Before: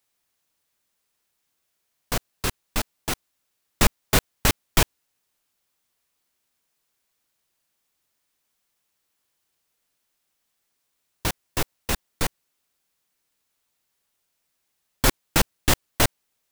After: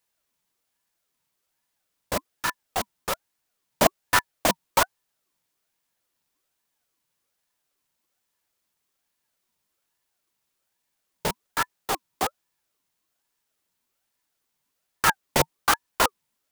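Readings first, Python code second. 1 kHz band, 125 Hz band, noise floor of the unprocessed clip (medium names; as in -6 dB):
+5.0 dB, -9.5 dB, -76 dBFS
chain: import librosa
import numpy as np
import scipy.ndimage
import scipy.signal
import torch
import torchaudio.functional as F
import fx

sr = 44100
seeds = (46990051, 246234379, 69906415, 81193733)

y = fx.peak_eq(x, sr, hz=380.0, db=12.5, octaves=0.32)
y = fx.ring_lfo(y, sr, carrier_hz=950.0, swing_pct=45, hz=1.2)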